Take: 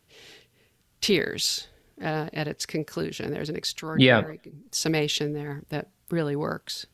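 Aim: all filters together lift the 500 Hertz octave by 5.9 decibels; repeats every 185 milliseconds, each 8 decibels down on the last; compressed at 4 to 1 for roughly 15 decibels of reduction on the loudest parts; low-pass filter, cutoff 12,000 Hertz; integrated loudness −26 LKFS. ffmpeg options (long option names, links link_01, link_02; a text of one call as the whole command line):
ffmpeg -i in.wav -af "lowpass=12000,equalizer=frequency=500:width_type=o:gain=7,acompressor=threshold=-28dB:ratio=4,aecho=1:1:185|370|555|740|925:0.398|0.159|0.0637|0.0255|0.0102,volume=5.5dB" out.wav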